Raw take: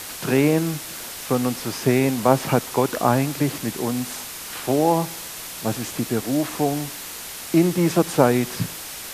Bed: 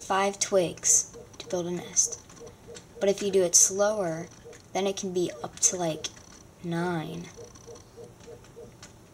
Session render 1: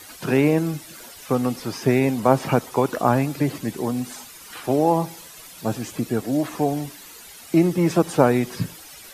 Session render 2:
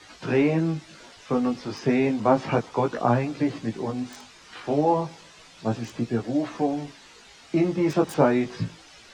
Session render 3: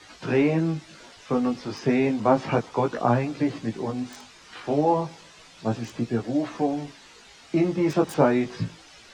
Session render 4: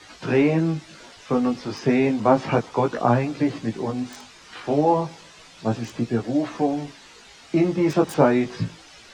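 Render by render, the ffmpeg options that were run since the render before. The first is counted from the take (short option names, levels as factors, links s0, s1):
-af "afftdn=nr=12:nf=-35"
-filter_complex "[0:a]flanger=delay=17:depth=3.4:speed=0.32,acrossover=split=130|6600[s0][s1][s2];[s2]acrusher=bits=5:mix=0:aa=0.000001[s3];[s0][s1][s3]amix=inputs=3:normalize=0"
-af anull
-af "volume=1.33"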